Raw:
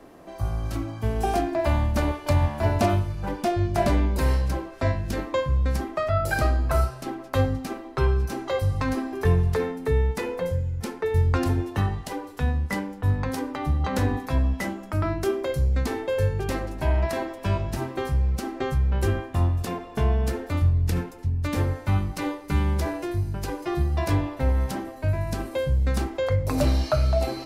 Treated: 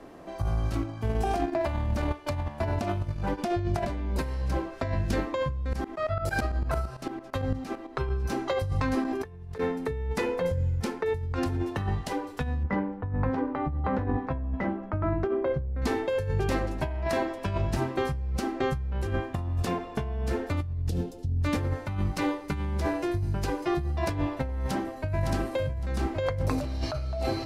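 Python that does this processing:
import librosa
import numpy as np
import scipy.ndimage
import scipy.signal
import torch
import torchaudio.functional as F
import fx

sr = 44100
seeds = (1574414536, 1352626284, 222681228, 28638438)

y = fx.transient(x, sr, attack_db=-5, sustain_db=-10, at=(0.69, 3.37), fade=0.02)
y = fx.tremolo_shape(y, sr, shape='saw_up', hz=8.9, depth_pct=fx.line((5.68, 95.0), (8.18, 70.0)), at=(5.68, 8.18), fade=0.02)
y = fx.lowpass(y, sr, hz=1500.0, slope=12, at=(12.63, 15.82))
y = fx.band_shelf(y, sr, hz=1500.0, db=-14.0, octaves=1.7, at=(20.89, 21.41))
y = fx.echo_throw(y, sr, start_s=24.66, length_s=0.63, ms=560, feedback_pct=65, wet_db=-5.0)
y = fx.edit(y, sr, fx.clip_gain(start_s=9.05, length_s=0.53, db=11.5), tone=tone)
y = fx.high_shelf(y, sr, hz=11000.0, db=-12.0)
y = fx.over_compress(y, sr, threshold_db=-26.0, ratio=-1.0)
y = y * librosa.db_to_amplitude(-2.5)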